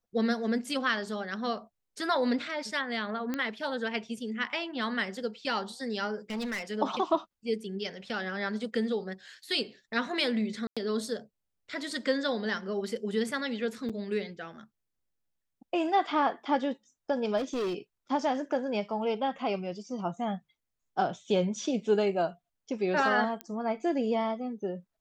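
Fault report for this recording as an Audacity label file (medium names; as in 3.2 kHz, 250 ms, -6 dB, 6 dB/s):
3.340000	3.340000	pop -18 dBFS
6.300000	6.630000	clipped -30.5 dBFS
10.670000	10.770000	dropout 96 ms
13.890000	13.900000	dropout 6.3 ms
17.370000	17.780000	clipped -28 dBFS
23.410000	23.410000	pop -21 dBFS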